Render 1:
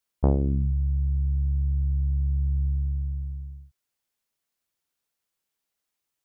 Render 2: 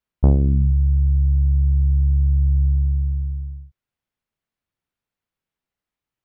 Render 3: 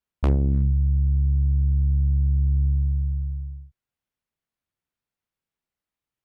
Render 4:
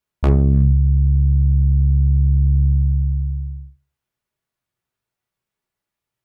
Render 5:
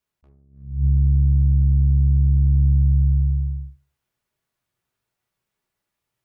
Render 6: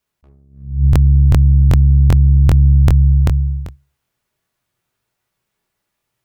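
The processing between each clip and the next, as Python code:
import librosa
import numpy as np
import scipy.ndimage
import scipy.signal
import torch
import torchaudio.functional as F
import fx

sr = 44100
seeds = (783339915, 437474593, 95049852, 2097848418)

y1 = fx.bass_treble(x, sr, bass_db=8, treble_db=-13)
y2 = fx.cheby_harmonics(y1, sr, harmonics=(3, 4, 5), levels_db=(-15, -24, -23), full_scale_db=-5.0)
y2 = 10.0 ** (-11.5 / 20.0) * (np.abs((y2 / 10.0 ** (-11.5 / 20.0) + 3.0) % 4.0 - 2.0) - 1.0)
y2 = F.gain(torch.from_numpy(y2), -1.5).numpy()
y3 = fx.rev_fdn(y2, sr, rt60_s=0.5, lf_ratio=0.75, hf_ratio=0.35, size_ms=48.0, drr_db=4.0)
y3 = F.gain(torch.from_numpy(y3), 4.5).numpy()
y4 = fx.rider(y3, sr, range_db=4, speed_s=0.5)
y4 = fx.attack_slew(y4, sr, db_per_s=110.0)
y4 = F.gain(torch.from_numpy(y4), -1.0).numpy()
y5 = fx.buffer_crackle(y4, sr, first_s=0.91, period_s=0.39, block=1024, kind='repeat')
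y5 = F.gain(torch.from_numpy(y5), 6.5).numpy()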